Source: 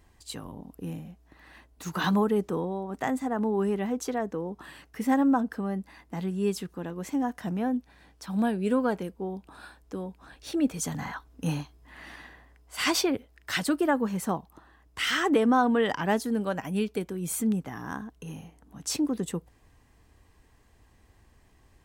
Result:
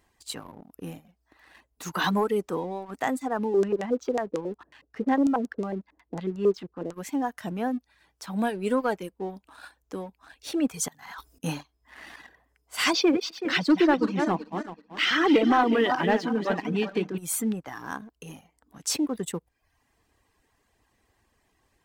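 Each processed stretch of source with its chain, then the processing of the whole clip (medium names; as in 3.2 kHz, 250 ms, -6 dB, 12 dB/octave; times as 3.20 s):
3.45–6.94 s: distance through air 280 m + LFO low-pass square 5.5 Hz 460–7100 Hz
10.88–11.44 s: treble shelf 3.5 kHz +11.5 dB + compressor with a negative ratio -43 dBFS + slow attack 162 ms
12.93–17.18 s: backward echo that repeats 189 ms, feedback 53%, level -7 dB + cabinet simulation 130–5200 Hz, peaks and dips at 170 Hz +7 dB, 320 Hz +9 dB, 2.5 kHz +3 dB
whole clip: reverb removal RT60 0.68 s; bass shelf 190 Hz -11 dB; waveshaping leveller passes 1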